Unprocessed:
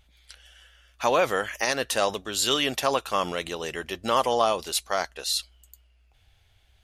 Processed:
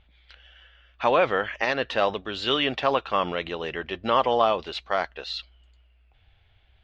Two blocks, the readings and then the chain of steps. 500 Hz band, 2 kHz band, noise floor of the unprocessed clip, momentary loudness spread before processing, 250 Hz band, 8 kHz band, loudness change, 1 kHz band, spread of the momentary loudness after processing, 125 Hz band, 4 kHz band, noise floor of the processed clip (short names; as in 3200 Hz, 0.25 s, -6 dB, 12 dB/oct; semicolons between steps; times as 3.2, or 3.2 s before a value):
+1.5 dB, +1.5 dB, -62 dBFS, 8 LU, +1.5 dB, under -20 dB, +0.5 dB, +1.5 dB, 10 LU, +1.5 dB, -2.0 dB, -61 dBFS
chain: LPF 3500 Hz 24 dB/oct; gain +1.5 dB